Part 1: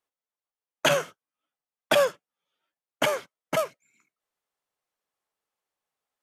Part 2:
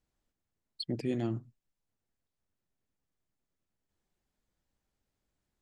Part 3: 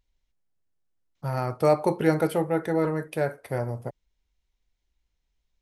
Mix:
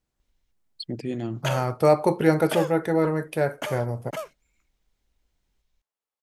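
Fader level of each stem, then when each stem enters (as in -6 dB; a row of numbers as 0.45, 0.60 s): -8.0, +2.5, +2.5 dB; 0.60, 0.00, 0.20 s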